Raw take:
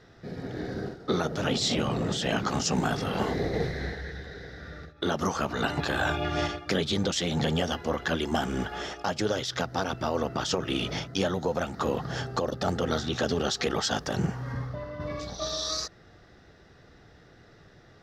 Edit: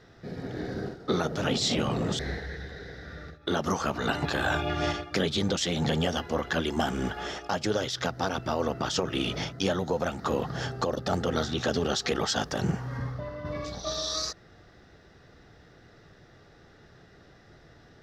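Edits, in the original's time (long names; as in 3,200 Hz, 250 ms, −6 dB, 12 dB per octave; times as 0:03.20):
0:02.19–0:03.74: remove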